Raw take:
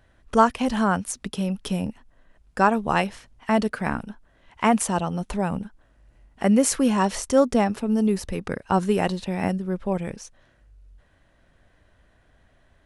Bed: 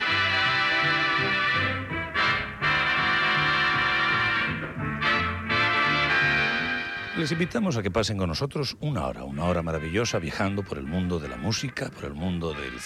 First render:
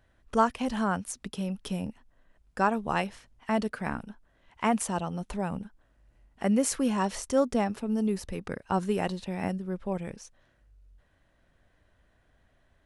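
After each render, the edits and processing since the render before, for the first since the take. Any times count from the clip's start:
level −6.5 dB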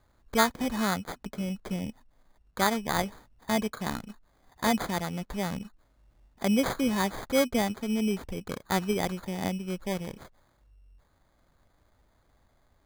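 decimation without filtering 16×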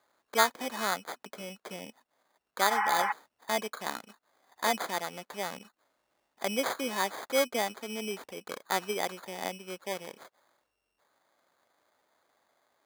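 high-pass filter 460 Hz 12 dB per octave
0:02.73–0:03.09: healed spectral selection 750–3,100 Hz before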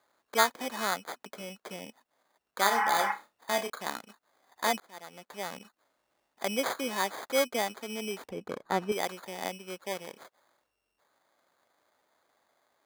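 0:02.60–0:03.70: flutter between parallel walls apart 5.2 metres, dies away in 0.22 s
0:04.80–0:05.60: fade in
0:08.29–0:08.92: spectral tilt −3.5 dB per octave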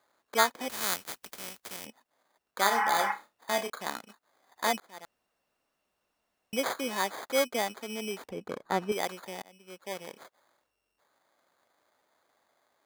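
0:00.68–0:01.85: compressing power law on the bin magnitudes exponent 0.33
0:05.05–0:06.53: fill with room tone
0:09.42–0:10.08: fade in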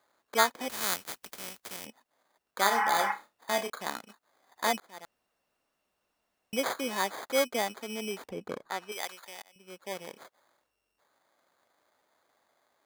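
0:08.68–0:09.56: high-pass filter 1,500 Hz 6 dB per octave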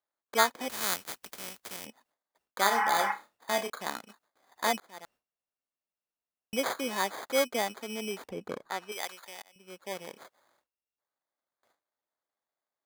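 noise gate with hold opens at −57 dBFS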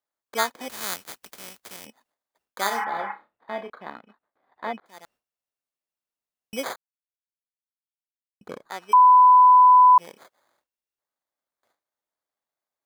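0:02.84–0:04.86: high-frequency loss of the air 470 metres
0:06.76–0:08.41: silence
0:08.93–0:09.98: beep over 1,000 Hz −9.5 dBFS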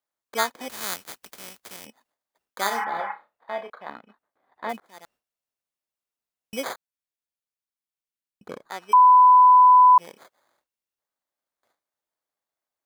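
0:03.00–0:03.89: low shelf with overshoot 420 Hz −6 dB, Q 1.5
0:04.69–0:06.60: floating-point word with a short mantissa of 2 bits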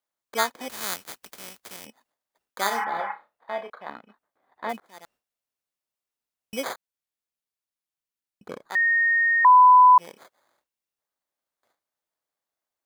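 0:08.75–0:09.45: beep over 1,850 Hz −17.5 dBFS

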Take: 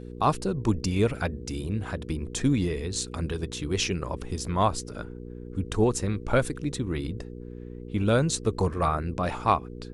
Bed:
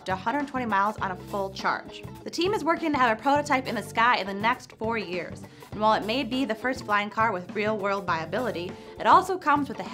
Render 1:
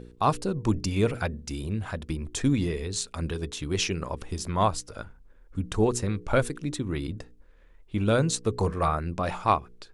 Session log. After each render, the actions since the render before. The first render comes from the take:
hum removal 60 Hz, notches 8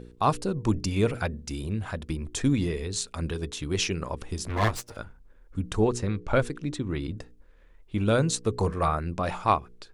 0:04.48–0:04.97: lower of the sound and its delayed copy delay 8.6 ms
0:05.80–0:07.11: high-frequency loss of the air 55 metres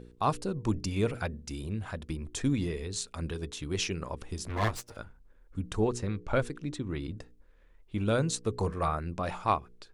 level −4.5 dB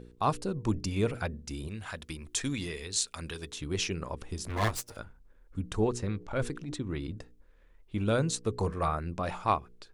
0:01.68–0:03.52: tilt shelving filter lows −6.5 dB
0:04.44–0:05.00: high-shelf EQ 5,700 Hz +8 dB
0:06.18–0:06.76: transient designer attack −10 dB, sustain +4 dB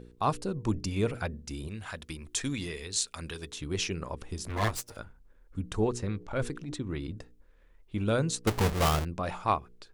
0:08.47–0:09.05: each half-wave held at its own peak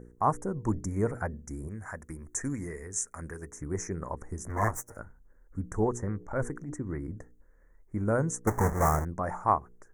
elliptic band-stop filter 1,900–6,200 Hz, stop band 40 dB
dynamic equaliser 900 Hz, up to +5 dB, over −47 dBFS, Q 2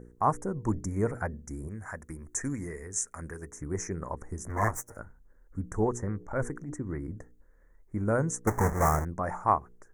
dynamic equaliser 3,200 Hz, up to +4 dB, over −47 dBFS, Q 1

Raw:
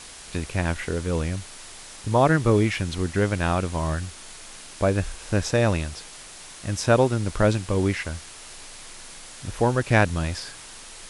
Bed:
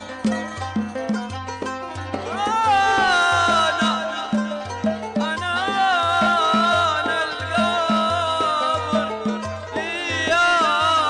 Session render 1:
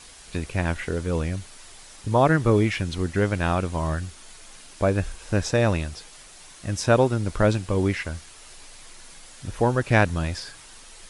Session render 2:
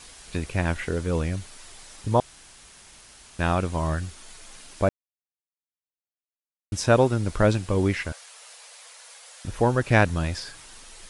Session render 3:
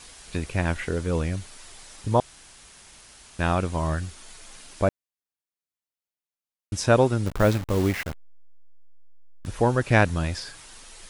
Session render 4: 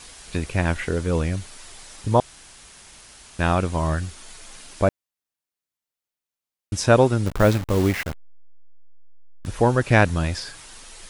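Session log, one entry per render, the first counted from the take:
broadband denoise 6 dB, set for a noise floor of −43 dBFS
0:02.20–0:03.39: fill with room tone; 0:04.89–0:06.72: silence; 0:08.12–0:09.45: linear-phase brick-wall high-pass 440 Hz
0:07.26–0:09.46: hold until the input has moved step −30.5 dBFS
level +3 dB; brickwall limiter −2 dBFS, peak gain reduction 1 dB

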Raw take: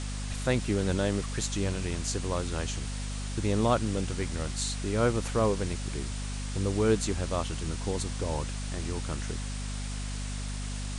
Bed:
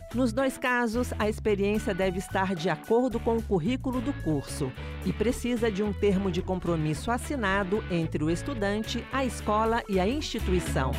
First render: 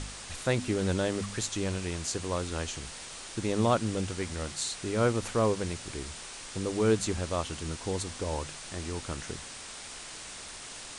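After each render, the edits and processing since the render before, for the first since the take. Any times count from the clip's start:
hum removal 50 Hz, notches 5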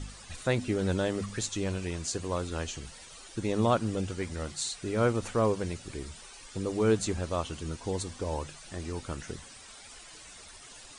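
broadband denoise 12 dB, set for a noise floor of −44 dBFS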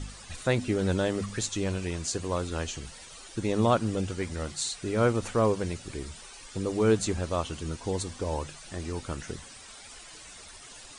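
level +2 dB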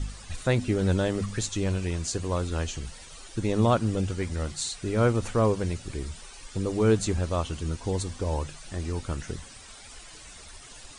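low-shelf EQ 110 Hz +9 dB

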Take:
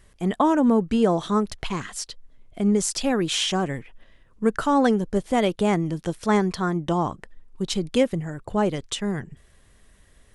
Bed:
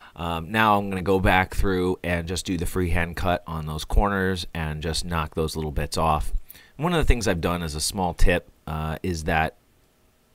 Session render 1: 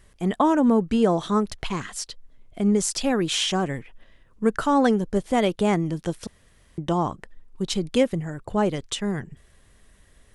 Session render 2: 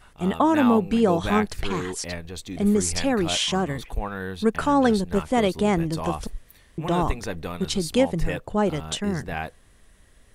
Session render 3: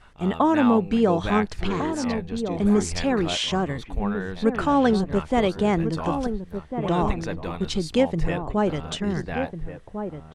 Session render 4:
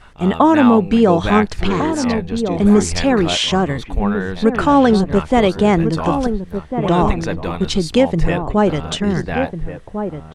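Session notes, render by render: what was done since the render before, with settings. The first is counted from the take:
0:06.27–0:06.78: fill with room tone
mix in bed −8.5 dB
high-frequency loss of the air 70 metres; slap from a distant wall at 240 metres, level −8 dB
level +8 dB; brickwall limiter −2 dBFS, peak gain reduction 3 dB

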